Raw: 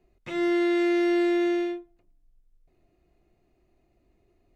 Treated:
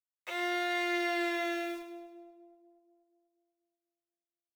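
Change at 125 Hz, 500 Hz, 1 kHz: can't be measured, −10.5 dB, +0.5 dB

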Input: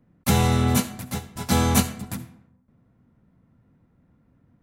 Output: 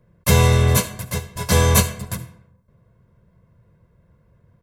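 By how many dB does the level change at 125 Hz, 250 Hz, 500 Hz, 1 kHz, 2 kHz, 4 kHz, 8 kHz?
+6.5, −1.5, +7.0, +2.0, +6.5, +4.5, +5.5 decibels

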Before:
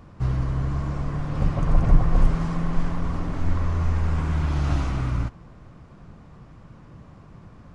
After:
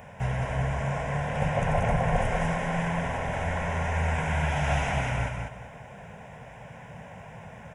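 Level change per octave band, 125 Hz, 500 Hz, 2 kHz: −4.5, +6.0, +9.0 decibels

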